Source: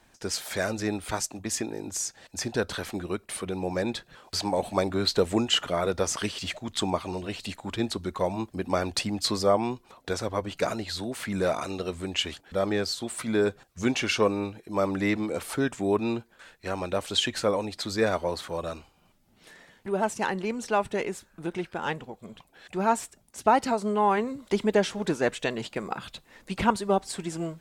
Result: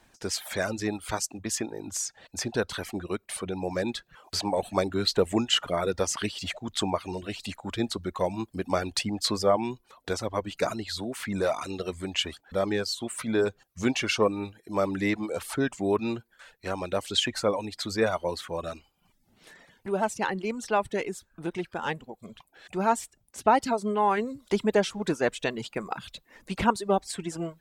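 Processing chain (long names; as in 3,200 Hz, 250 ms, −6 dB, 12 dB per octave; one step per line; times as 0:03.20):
reverb reduction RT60 0.59 s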